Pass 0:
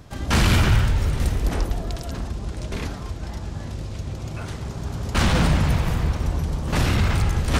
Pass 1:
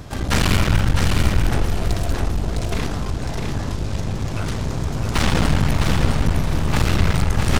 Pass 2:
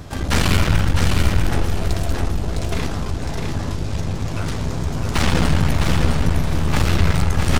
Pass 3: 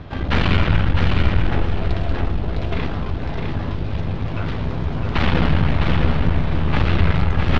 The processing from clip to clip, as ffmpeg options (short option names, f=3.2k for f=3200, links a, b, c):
-filter_complex "[0:a]asplit=2[a][b];[b]acompressor=threshold=-28dB:ratio=6,volume=2.5dB[c];[a][c]amix=inputs=2:normalize=0,aeval=exprs='clip(val(0),-1,0.0316)':c=same,aecho=1:1:657|1314|1971:0.596|0.149|0.0372,volume=1.5dB"
-filter_complex "[0:a]asplit=2[a][b];[b]adelay=12,volume=-10.5dB[c];[a][c]amix=inputs=2:normalize=0"
-af "lowpass=f=3.6k:w=0.5412,lowpass=f=3.6k:w=1.3066"